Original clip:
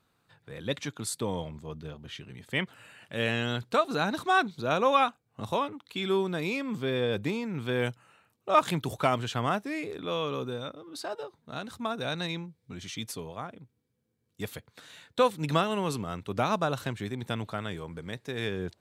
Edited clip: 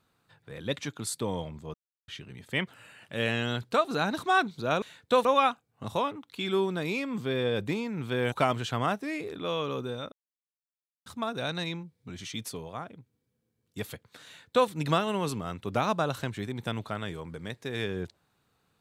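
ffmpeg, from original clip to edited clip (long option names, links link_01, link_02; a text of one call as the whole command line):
ffmpeg -i in.wav -filter_complex "[0:a]asplit=8[link_01][link_02][link_03][link_04][link_05][link_06][link_07][link_08];[link_01]atrim=end=1.74,asetpts=PTS-STARTPTS,afade=type=out:start_time=1.736:duration=0.004:curve=hsin[link_09];[link_02]atrim=start=1.74:end=2.08,asetpts=PTS-STARTPTS,volume=0[link_10];[link_03]atrim=start=2.08:end=4.822,asetpts=PTS-STARTPTS,afade=type=in:duration=0.004:curve=hsin[link_11];[link_04]atrim=start=14.888:end=15.322[link_12];[link_05]atrim=start=4.818:end=7.892[link_13];[link_06]atrim=start=8.948:end=10.75,asetpts=PTS-STARTPTS,afade=type=out:start_time=1.798:duration=0.004:curve=hsin[link_14];[link_07]atrim=start=10.75:end=11.69,asetpts=PTS-STARTPTS,volume=0[link_15];[link_08]atrim=start=11.69,asetpts=PTS-STARTPTS,afade=type=in:duration=0.004:curve=hsin[link_16];[link_09][link_10][link_11]concat=n=3:v=0:a=1[link_17];[link_17][link_12]acrossfade=duration=0.004:curve1=hsin:curve2=hsin[link_18];[link_18][link_13]acrossfade=duration=0.004:curve1=hsin:curve2=hsin[link_19];[link_14][link_15][link_16]concat=n=3:v=0:a=1[link_20];[link_19][link_20]acrossfade=duration=0.004:curve1=hsin:curve2=hsin" out.wav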